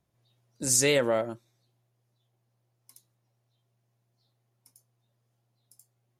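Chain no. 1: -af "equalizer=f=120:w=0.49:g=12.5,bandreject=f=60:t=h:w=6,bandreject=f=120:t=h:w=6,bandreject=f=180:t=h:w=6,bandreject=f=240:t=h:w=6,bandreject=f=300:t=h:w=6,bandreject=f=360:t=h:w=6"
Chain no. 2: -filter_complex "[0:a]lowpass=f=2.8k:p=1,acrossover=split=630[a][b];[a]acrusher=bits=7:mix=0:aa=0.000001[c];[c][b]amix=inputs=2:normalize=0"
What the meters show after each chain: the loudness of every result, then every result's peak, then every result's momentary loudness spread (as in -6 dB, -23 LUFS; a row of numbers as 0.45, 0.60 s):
-23.0, -28.0 LUFS; -9.5, -13.0 dBFS; 14, 14 LU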